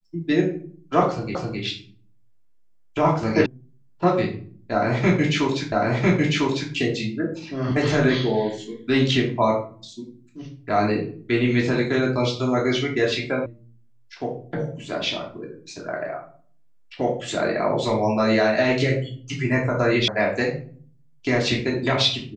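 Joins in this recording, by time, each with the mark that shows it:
1.35 repeat of the last 0.26 s
3.46 sound cut off
5.72 repeat of the last 1 s
13.46 sound cut off
20.08 sound cut off

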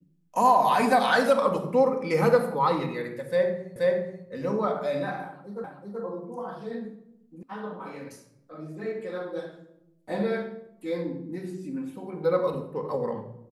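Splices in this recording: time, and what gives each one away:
3.76 repeat of the last 0.48 s
5.64 repeat of the last 0.38 s
7.43 sound cut off

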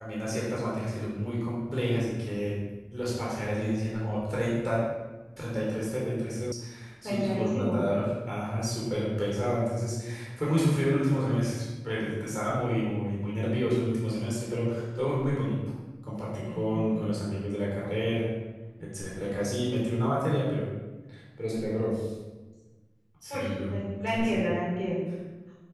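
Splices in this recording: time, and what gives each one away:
6.52 sound cut off

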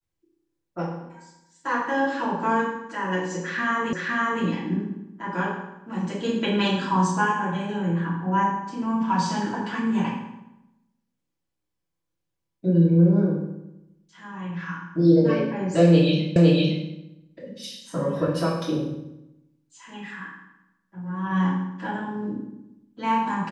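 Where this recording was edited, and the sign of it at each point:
3.93 repeat of the last 0.51 s
16.36 repeat of the last 0.51 s

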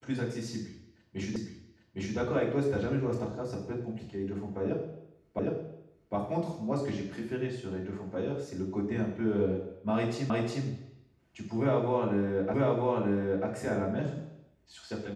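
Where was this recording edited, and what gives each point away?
1.36 repeat of the last 0.81 s
5.39 repeat of the last 0.76 s
10.3 repeat of the last 0.36 s
12.54 repeat of the last 0.94 s

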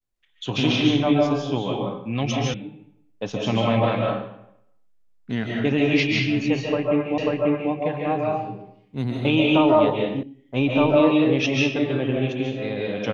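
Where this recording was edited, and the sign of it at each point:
2.54 sound cut off
7.18 repeat of the last 0.54 s
10.23 sound cut off

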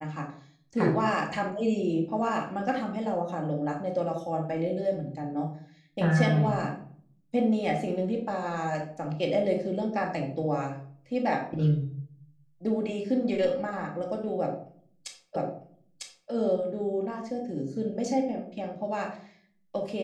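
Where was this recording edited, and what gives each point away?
15.36 repeat of the last 0.95 s

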